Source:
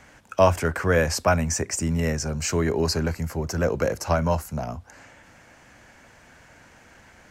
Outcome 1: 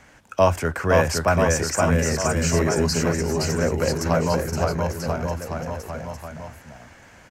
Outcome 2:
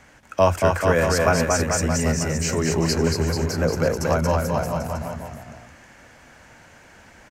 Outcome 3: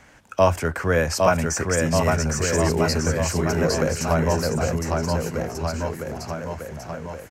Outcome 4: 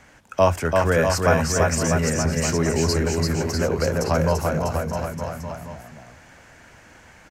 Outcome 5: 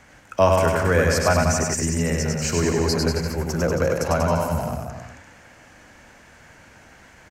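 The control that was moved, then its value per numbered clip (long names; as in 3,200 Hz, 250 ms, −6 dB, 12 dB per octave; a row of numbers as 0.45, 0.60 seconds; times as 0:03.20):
bouncing-ball delay, first gap: 520, 230, 810, 340, 100 milliseconds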